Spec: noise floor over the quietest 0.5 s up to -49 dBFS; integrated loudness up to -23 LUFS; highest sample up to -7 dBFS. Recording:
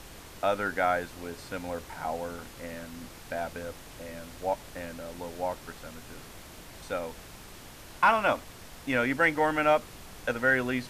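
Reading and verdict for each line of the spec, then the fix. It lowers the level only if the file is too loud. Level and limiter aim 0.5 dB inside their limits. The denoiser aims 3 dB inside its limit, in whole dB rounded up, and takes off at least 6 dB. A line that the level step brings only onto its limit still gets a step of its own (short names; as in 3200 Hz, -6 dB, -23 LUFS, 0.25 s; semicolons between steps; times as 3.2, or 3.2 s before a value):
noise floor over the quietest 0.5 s -47 dBFS: fail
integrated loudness -29.5 LUFS: OK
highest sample -12.5 dBFS: OK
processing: denoiser 6 dB, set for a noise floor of -47 dBFS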